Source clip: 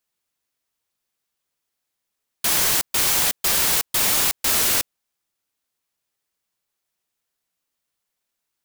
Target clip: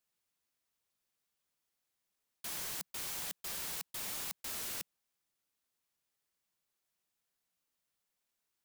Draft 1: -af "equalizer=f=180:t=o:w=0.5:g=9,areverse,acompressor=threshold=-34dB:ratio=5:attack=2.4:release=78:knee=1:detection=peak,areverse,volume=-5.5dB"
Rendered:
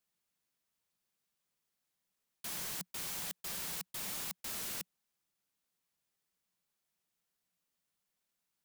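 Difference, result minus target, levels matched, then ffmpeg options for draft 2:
250 Hz band +3.0 dB
-af "equalizer=f=180:t=o:w=0.5:g=2.5,areverse,acompressor=threshold=-34dB:ratio=5:attack=2.4:release=78:knee=1:detection=peak,areverse,volume=-5.5dB"

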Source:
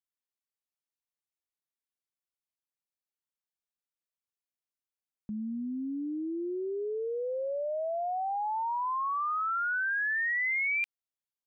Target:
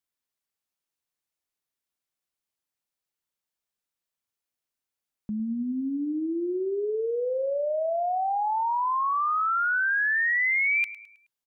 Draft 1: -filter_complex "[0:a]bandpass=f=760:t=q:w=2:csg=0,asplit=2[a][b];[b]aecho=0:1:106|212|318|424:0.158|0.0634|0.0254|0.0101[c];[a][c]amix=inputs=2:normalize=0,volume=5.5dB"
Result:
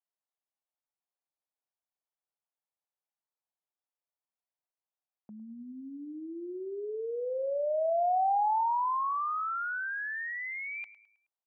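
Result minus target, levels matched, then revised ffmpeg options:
1000 Hz band +3.0 dB
-filter_complex "[0:a]asplit=2[a][b];[b]aecho=0:1:106|212|318|424:0.158|0.0634|0.0254|0.0101[c];[a][c]amix=inputs=2:normalize=0,volume=5.5dB"

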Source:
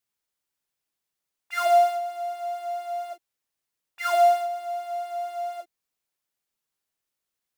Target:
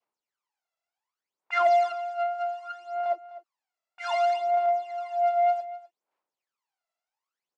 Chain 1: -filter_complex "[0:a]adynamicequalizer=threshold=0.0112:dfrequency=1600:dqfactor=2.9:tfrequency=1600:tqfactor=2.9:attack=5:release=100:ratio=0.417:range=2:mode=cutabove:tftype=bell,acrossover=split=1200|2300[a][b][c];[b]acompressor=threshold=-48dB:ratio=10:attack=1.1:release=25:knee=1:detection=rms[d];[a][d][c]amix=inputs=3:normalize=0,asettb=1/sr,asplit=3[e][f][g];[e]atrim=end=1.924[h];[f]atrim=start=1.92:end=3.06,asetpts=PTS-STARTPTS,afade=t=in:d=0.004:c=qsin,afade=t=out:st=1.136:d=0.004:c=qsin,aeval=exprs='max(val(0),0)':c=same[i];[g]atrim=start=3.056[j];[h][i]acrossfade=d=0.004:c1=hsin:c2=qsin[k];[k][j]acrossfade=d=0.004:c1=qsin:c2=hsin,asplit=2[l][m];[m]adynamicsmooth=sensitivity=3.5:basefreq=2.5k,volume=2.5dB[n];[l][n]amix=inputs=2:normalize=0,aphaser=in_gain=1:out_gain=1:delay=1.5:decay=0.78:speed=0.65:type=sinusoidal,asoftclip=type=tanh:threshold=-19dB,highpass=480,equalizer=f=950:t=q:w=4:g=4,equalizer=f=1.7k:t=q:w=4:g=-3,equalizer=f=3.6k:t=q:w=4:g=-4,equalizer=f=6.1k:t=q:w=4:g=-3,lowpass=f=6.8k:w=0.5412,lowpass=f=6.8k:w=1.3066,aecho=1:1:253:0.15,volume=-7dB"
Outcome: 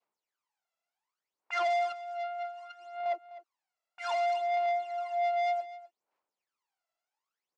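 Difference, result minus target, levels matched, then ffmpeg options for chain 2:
compressor: peak gain reduction +9 dB; soft clip: distortion +11 dB
-filter_complex "[0:a]adynamicequalizer=threshold=0.0112:dfrequency=1600:dqfactor=2.9:tfrequency=1600:tqfactor=2.9:attack=5:release=100:ratio=0.417:range=2:mode=cutabove:tftype=bell,acrossover=split=1200|2300[a][b][c];[b]acompressor=threshold=-38dB:ratio=10:attack=1.1:release=25:knee=1:detection=rms[d];[a][d][c]amix=inputs=3:normalize=0,asettb=1/sr,asplit=3[e][f][g];[e]atrim=end=1.924[h];[f]atrim=start=1.92:end=3.06,asetpts=PTS-STARTPTS,afade=t=in:d=0.004:c=qsin,afade=t=out:st=1.136:d=0.004:c=qsin,aeval=exprs='max(val(0),0)':c=same[i];[g]atrim=start=3.056[j];[h][i]acrossfade=d=0.004:c1=hsin:c2=qsin[k];[k][j]acrossfade=d=0.004:c1=qsin:c2=hsin,asplit=2[l][m];[m]adynamicsmooth=sensitivity=3.5:basefreq=2.5k,volume=2.5dB[n];[l][n]amix=inputs=2:normalize=0,aphaser=in_gain=1:out_gain=1:delay=1.5:decay=0.78:speed=0.65:type=sinusoidal,asoftclip=type=tanh:threshold=-7.5dB,highpass=480,equalizer=f=950:t=q:w=4:g=4,equalizer=f=1.7k:t=q:w=4:g=-3,equalizer=f=3.6k:t=q:w=4:g=-4,equalizer=f=6.1k:t=q:w=4:g=-3,lowpass=f=6.8k:w=0.5412,lowpass=f=6.8k:w=1.3066,aecho=1:1:253:0.15,volume=-7dB"

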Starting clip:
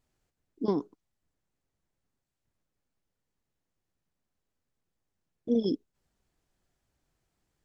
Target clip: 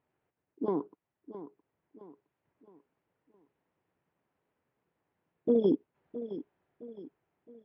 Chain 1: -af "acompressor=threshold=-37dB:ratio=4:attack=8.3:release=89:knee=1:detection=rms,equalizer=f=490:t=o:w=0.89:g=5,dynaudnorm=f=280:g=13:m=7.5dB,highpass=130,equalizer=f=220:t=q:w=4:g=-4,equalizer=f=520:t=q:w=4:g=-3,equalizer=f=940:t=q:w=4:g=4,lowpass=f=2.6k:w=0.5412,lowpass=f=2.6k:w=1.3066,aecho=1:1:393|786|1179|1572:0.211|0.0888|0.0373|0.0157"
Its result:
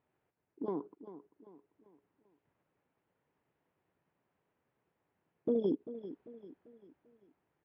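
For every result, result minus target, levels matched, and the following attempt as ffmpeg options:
echo 0.272 s early; compressor: peak gain reduction +6 dB
-af "acompressor=threshold=-37dB:ratio=4:attack=8.3:release=89:knee=1:detection=rms,equalizer=f=490:t=o:w=0.89:g=5,dynaudnorm=f=280:g=13:m=7.5dB,highpass=130,equalizer=f=220:t=q:w=4:g=-4,equalizer=f=520:t=q:w=4:g=-3,equalizer=f=940:t=q:w=4:g=4,lowpass=f=2.6k:w=0.5412,lowpass=f=2.6k:w=1.3066,aecho=1:1:665|1330|1995|2660:0.211|0.0888|0.0373|0.0157"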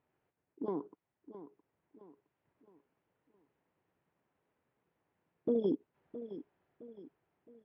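compressor: peak gain reduction +6 dB
-af "acompressor=threshold=-29dB:ratio=4:attack=8.3:release=89:knee=1:detection=rms,equalizer=f=490:t=o:w=0.89:g=5,dynaudnorm=f=280:g=13:m=7.5dB,highpass=130,equalizer=f=220:t=q:w=4:g=-4,equalizer=f=520:t=q:w=4:g=-3,equalizer=f=940:t=q:w=4:g=4,lowpass=f=2.6k:w=0.5412,lowpass=f=2.6k:w=1.3066,aecho=1:1:665|1330|1995|2660:0.211|0.0888|0.0373|0.0157"

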